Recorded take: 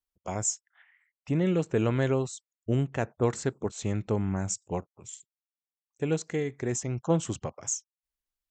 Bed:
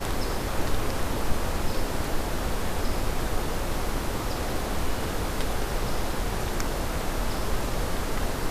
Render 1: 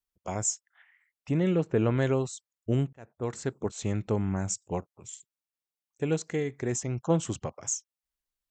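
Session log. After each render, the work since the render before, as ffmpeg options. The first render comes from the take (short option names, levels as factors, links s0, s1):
-filter_complex "[0:a]asettb=1/sr,asplit=3[s0][s1][s2];[s0]atrim=end=1.554[s3];[s1]atrim=start=1.55:end=1.98,asetpts=PTS-STARTPTS,afade=t=in:d=0.004:c=qsin,afade=t=out:st=0.426:d=0.004:c=qsin,aemphasis=mode=reproduction:type=75fm[s4];[s2]atrim=start=1.976[s5];[s3][s4]acrossfade=d=0.004:c1=hsin:c2=qsin[s6];[s6][s5]acrossfade=d=0.004:c1=qsin:c2=hsin,asplit=2[s7][s8];[s7]atrim=end=2.93,asetpts=PTS-STARTPTS,afade=t=out:st=2.926:d=0.004:c=hsin[s9];[s8]atrim=start=2.93,asetpts=PTS-STARTPTS,afade=t=in:d=0.71[s10];[s9][s10]concat=n=2:v=0:a=1"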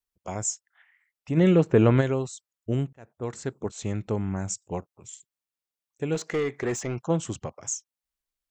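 -filter_complex "[0:a]asplit=3[s0][s1][s2];[s0]afade=t=out:st=1.36:d=0.02[s3];[s1]acontrast=81,afade=t=in:st=1.36:d=0.02,afade=t=out:st=2:d=0.02[s4];[s2]afade=t=in:st=2:d=0.02[s5];[s3][s4][s5]amix=inputs=3:normalize=0,asplit=3[s6][s7][s8];[s6]afade=t=out:st=6.14:d=0.02[s9];[s7]asplit=2[s10][s11];[s11]highpass=f=720:p=1,volume=8.91,asoftclip=type=tanh:threshold=0.133[s12];[s10][s12]amix=inputs=2:normalize=0,lowpass=f=2300:p=1,volume=0.501,afade=t=in:st=6.14:d=0.02,afade=t=out:st=7.01:d=0.02[s13];[s8]afade=t=in:st=7.01:d=0.02[s14];[s9][s13][s14]amix=inputs=3:normalize=0"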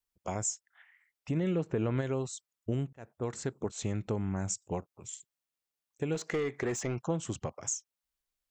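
-af "alimiter=limit=0.2:level=0:latency=1:release=200,acompressor=threshold=0.0282:ratio=2.5"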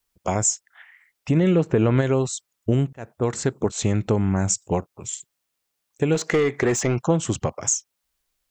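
-af "volume=3.98"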